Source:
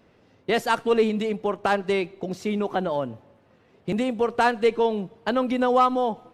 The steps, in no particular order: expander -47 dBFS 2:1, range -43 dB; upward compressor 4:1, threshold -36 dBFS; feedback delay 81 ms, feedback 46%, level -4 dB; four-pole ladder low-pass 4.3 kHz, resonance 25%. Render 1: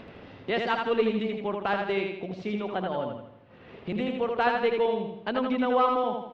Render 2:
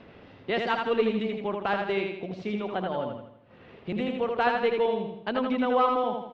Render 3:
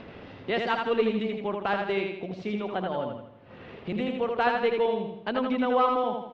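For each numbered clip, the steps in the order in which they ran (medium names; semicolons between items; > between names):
expander > four-pole ladder low-pass > upward compressor > feedback delay; upward compressor > four-pole ladder low-pass > expander > feedback delay; four-pole ladder low-pass > upward compressor > expander > feedback delay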